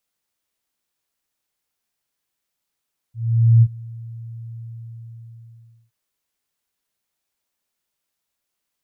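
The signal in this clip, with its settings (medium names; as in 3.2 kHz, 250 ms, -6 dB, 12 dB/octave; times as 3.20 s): ADSR sine 115 Hz, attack 481 ms, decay 52 ms, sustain -24 dB, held 1.45 s, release 1320 ms -7 dBFS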